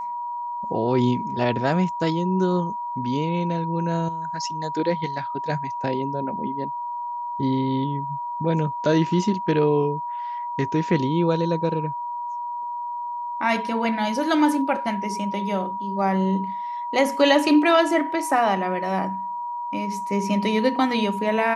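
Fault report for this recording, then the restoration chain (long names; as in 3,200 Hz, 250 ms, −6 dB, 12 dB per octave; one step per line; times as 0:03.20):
whistle 960 Hz −27 dBFS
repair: notch filter 960 Hz, Q 30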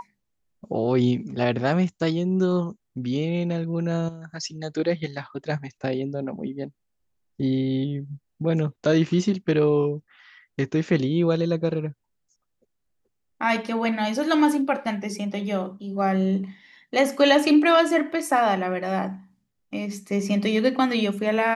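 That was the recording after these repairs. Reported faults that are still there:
none of them is left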